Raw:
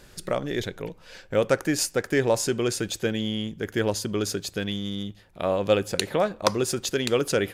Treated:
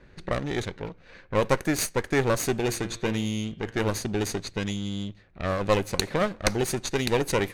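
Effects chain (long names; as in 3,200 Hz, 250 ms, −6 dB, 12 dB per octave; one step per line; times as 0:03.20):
lower of the sound and its delayed copy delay 0.47 ms
0:02.56–0:03.98: hum removal 115.8 Hz, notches 36
low-pass that shuts in the quiet parts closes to 2,100 Hz, open at −22 dBFS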